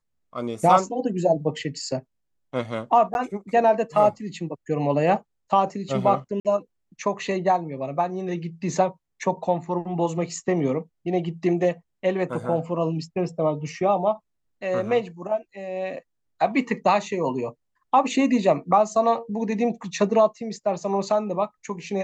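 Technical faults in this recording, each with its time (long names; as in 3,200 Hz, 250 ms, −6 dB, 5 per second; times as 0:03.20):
0:03.14–0:03.15: drop-out 11 ms
0:06.40–0:06.45: drop-out 48 ms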